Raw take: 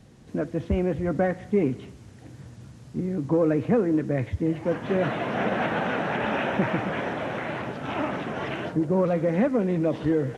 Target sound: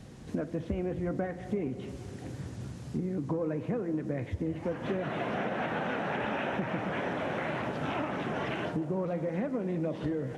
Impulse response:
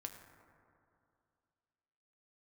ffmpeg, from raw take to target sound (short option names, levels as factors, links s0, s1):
-filter_complex "[0:a]acompressor=threshold=0.02:ratio=6,asplit=2[s0][s1];[1:a]atrim=start_sample=2205,asetrate=23373,aresample=44100[s2];[s1][s2]afir=irnorm=-1:irlink=0,volume=0.631[s3];[s0][s3]amix=inputs=2:normalize=0"